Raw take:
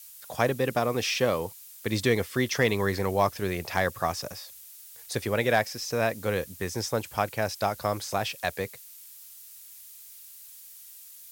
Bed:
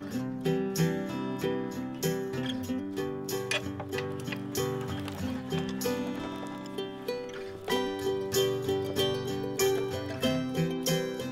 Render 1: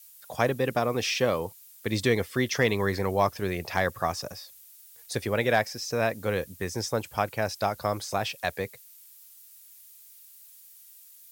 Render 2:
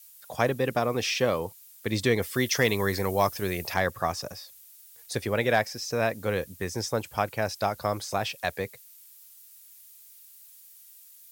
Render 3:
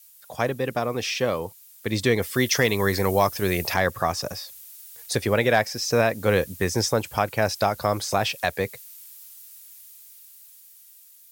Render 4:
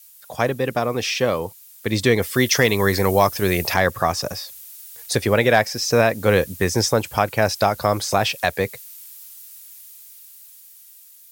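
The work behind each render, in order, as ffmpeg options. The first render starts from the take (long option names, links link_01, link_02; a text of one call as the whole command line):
ffmpeg -i in.wav -af "afftdn=noise_reduction=6:noise_floor=-48" out.wav
ffmpeg -i in.wav -filter_complex "[0:a]asettb=1/sr,asplit=3[link_01][link_02][link_03];[link_01]atrim=end=2.224[link_04];[link_02]atrim=start=2.22:end=3.74,asetpts=PTS-STARTPTS,afade=type=in:duration=0.004:curve=qsin,afade=type=out:start_time=1.516:duration=0.004:curve=qsin,aemphasis=mode=production:type=cd[link_05];[link_03]atrim=start=3.736[link_06];[link_04][link_05]acrossfade=duration=0.004:curve1=hsin:curve2=qsin[link_07];[link_07][link_06]acrossfade=duration=0.004:curve1=qsin:curve2=hsin" out.wav
ffmpeg -i in.wav -af "dynaudnorm=framelen=560:gausssize=9:maxgain=9.5dB,alimiter=limit=-8dB:level=0:latency=1:release=294" out.wav
ffmpeg -i in.wav -af "volume=4dB" out.wav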